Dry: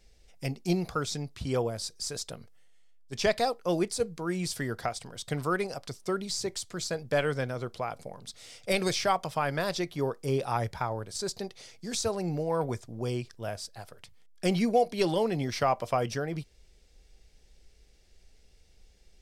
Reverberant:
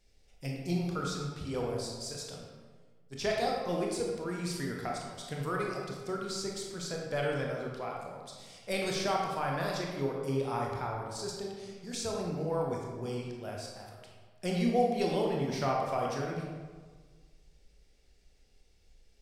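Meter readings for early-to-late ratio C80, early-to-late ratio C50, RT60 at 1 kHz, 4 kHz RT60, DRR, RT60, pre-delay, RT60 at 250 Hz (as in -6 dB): 3.0 dB, 1.0 dB, 1.5 s, 0.90 s, -1.5 dB, 1.6 s, 21 ms, 1.7 s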